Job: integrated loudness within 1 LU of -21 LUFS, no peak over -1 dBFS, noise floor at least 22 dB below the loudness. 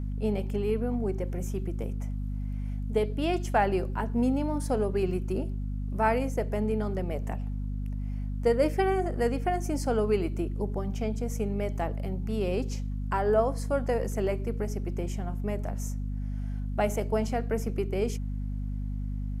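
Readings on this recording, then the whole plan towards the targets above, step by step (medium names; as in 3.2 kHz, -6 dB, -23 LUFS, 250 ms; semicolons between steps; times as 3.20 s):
hum 50 Hz; highest harmonic 250 Hz; hum level -30 dBFS; loudness -30.0 LUFS; peak level -11.0 dBFS; loudness target -21.0 LUFS
-> de-hum 50 Hz, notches 5; trim +9 dB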